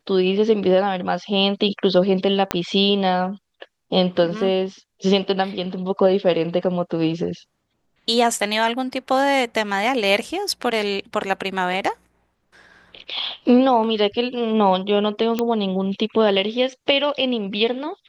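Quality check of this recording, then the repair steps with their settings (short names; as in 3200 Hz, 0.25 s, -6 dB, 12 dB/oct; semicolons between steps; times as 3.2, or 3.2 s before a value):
2.51 pop -4 dBFS
15.39 pop -8 dBFS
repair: de-click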